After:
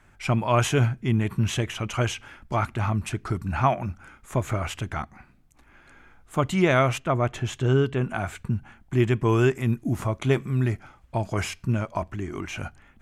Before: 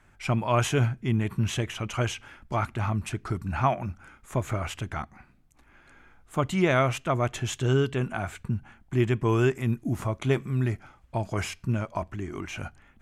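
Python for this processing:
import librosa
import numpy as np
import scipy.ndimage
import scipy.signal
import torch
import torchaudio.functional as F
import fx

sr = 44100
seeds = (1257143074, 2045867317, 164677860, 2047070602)

y = fx.high_shelf(x, sr, hz=3300.0, db=-8.5, at=(6.99, 8.09))
y = F.gain(torch.from_numpy(y), 2.5).numpy()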